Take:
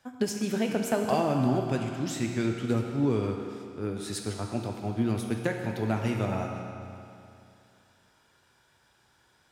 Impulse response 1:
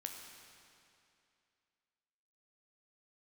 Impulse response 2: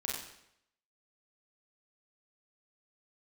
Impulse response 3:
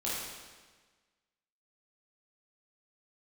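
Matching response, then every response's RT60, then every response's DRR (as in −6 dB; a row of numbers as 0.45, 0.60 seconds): 1; 2.6, 0.75, 1.4 seconds; 2.0, −4.5, −8.5 decibels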